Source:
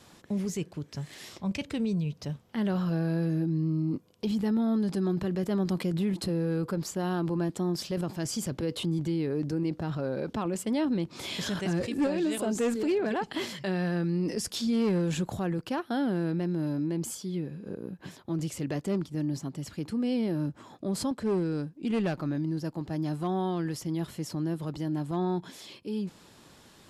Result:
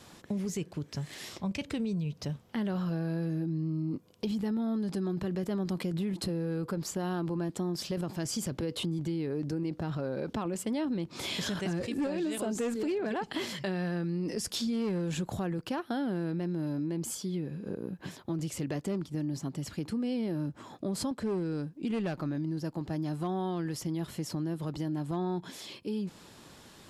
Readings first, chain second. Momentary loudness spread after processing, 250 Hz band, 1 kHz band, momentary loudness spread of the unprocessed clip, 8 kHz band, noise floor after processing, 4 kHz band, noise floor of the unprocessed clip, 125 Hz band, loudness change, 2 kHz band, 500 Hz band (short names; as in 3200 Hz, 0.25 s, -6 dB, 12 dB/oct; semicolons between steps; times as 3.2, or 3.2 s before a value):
5 LU, -3.5 dB, -3.0 dB, 7 LU, -1.0 dB, -55 dBFS, -1.0 dB, -56 dBFS, -3.0 dB, -3.0 dB, -2.5 dB, -3.5 dB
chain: compressor 3:1, threshold -33 dBFS, peak gain reduction 7.5 dB; gain +2 dB